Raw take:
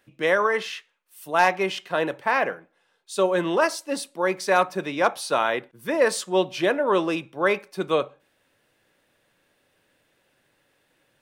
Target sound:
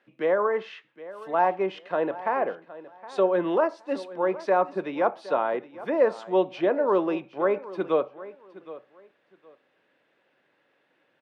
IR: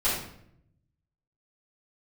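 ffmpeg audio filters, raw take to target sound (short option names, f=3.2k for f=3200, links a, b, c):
-filter_complex "[0:a]highpass=230,lowpass=2.7k,acrossover=split=1100[a][b];[b]acompressor=threshold=-40dB:ratio=6[c];[a][c]amix=inputs=2:normalize=0,aecho=1:1:766|1532:0.141|0.0311"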